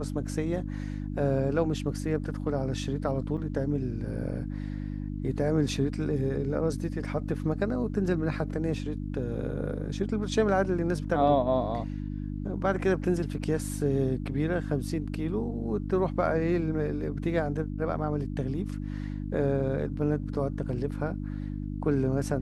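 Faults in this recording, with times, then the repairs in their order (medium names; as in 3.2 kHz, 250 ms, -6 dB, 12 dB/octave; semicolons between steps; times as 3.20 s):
hum 50 Hz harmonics 6 -34 dBFS
3.37–3.38 s: dropout 6.7 ms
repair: de-hum 50 Hz, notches 6; interpolate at 3.37 s, 6.7 ms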